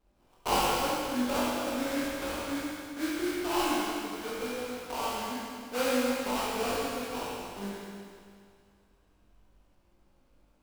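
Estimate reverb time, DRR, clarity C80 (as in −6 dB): 2.2 s, −7.5 dB, −1.5 dB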